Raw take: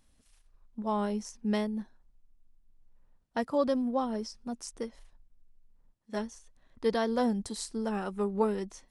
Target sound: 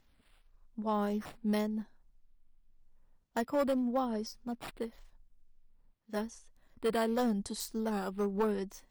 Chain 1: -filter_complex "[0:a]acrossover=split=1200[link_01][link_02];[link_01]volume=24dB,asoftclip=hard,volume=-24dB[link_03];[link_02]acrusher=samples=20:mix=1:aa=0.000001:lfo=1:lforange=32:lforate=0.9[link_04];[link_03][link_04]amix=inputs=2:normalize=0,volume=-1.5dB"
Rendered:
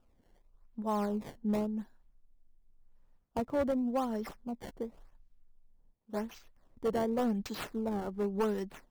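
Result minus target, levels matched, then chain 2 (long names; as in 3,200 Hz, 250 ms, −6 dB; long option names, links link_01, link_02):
sample-and-hold swept by an LFO: distortion +16 dB
-filter_complex "[0:a]acrossover=split=1200[link_01][link_02];[link_01]volume=24dB,asoftclip=hard,volume=-24dB[link_03];[link_02]acrusher=samples=4:mix=1:aa=0.000001:lfo=1:lforange=6.4:lforate=0.9[link_04];[link_03][link_04]amix=inputs=2:normalize=0,volume=-1.5dB"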